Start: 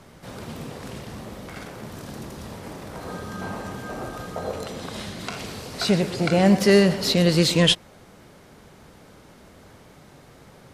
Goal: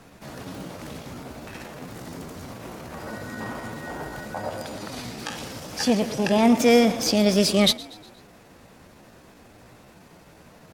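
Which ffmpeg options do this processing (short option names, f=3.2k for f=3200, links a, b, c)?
-filter_complex "[0:a]asplit=5[a][b][c][d][e];[b]adelay=122,afreqshift=32,volume=-20.5dB[f];[c]adelay=244,afreqshift=64,volume=-26.3dB[g];[d]adelay=366,afreqshift=96,volume=-32.2dB[h];[e]adelay=488,afreqshift=128,volume=-38dB[i];[a][f][g][h][i]amix=inputs=5:normalize=0,asetrate=52444,aresample=44100,atempo=0.840896,volume=-1dB"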